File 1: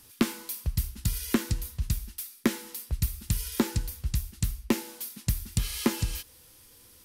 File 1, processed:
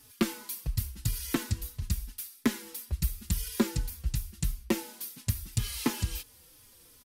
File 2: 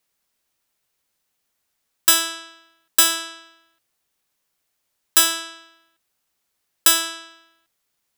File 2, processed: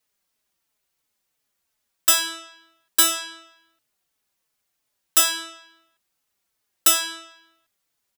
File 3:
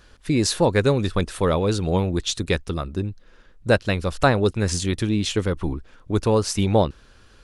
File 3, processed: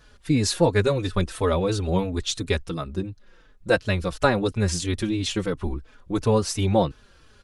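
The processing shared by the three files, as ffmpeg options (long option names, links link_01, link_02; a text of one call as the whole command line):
ffmpeg -i in.wav -filter_complex "[0:a]asplit=2[link_01][link_02];[link_02]adelay=4.1,afreqshift=-2.9[link_03];[link_01][link_03]amix=inputs=2:normalize=1,volume=1dB" out.wav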